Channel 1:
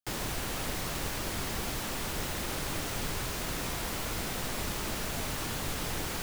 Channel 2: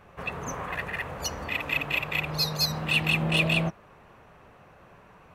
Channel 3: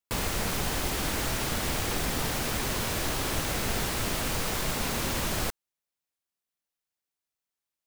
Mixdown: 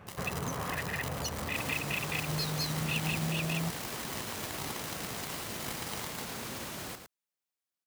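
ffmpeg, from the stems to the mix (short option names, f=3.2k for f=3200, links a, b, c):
-filter_complex "[0:a]aecho=1:1:1:0.92,acrusher=bits=3:mix=0:aa=0.5,volume=-7.5dB,asplit=2[a][b];[b]volume=-7.5dB[c];[1:a]lowshelf=f=200:g=10.5,acompressor=threshold=-31dB:ratio=6,volume=0dB[d];[2:a]alimiter=level_in=3.5dB:limit=-24dB:level=0:latency=1:release=26,volume=-3.5dB,adelay=1450,volume=-3.5dB,asplit=2[e][f];[f]volume=-8dB[g];[c][g]amix=inputs=2:normalize=0,aecho=0:1:109:1[h];[a][d][e][h]amix=inputs=4:normalize=0,highpass=98"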